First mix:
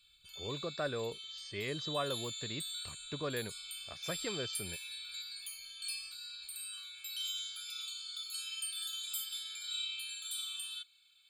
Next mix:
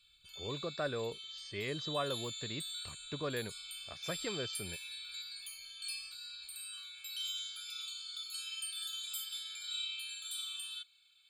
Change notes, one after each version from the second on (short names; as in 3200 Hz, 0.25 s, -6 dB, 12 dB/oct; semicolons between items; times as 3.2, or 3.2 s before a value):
master: add high shelf 8300 Hz -4.5 dB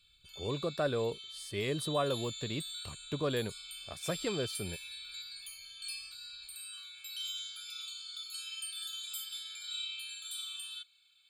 speech: remove rippled Chebyshev low-pass 6600 Hz, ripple 6 dB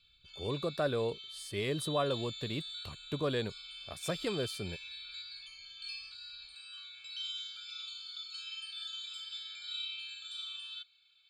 background: add LPF 5500 Hz 24 dB/oct